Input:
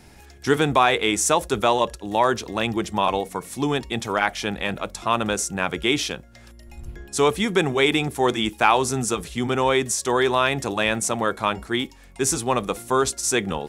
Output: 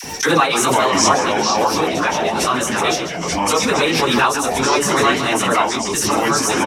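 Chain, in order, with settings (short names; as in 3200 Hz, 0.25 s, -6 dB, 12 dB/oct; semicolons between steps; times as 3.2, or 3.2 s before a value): tapped delay 41/45/141/305 ms -4/-10/-18.5/-8.5 dB; speed mistake 44.1 kHz file played as 48 kHz; HPF 190 Hz 6 dB/oct; dynamic EQ 1200 Hz, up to +5 dB, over -33 dBFS, Q 2.2; plain phase-vocoder stretch 0.53×; echoes that change speed 0.261 s, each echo -4 st, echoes 2; dispersion lows, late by 42 ms, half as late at 700 Hz; gate with hold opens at -29 dBFS; bell 5600 Hz +10.5 dB 0.26 oct; backwards sustainer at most 30 dB/s; gain +2.5 dB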